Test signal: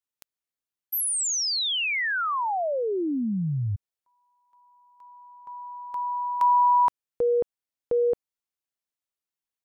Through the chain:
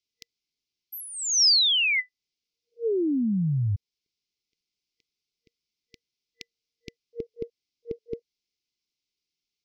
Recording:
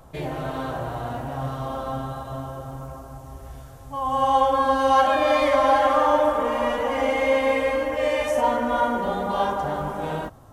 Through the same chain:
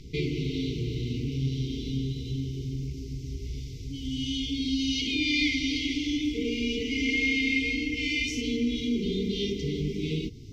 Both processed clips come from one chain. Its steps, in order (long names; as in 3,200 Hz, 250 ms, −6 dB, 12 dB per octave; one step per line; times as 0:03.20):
brick-wall band-stop 470–2,000 Hz
high shelf with overshoot 7,200 Hz −12.5 dB, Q 3
in parallel at 0 dB: downward compressor, threshold −38 dBFS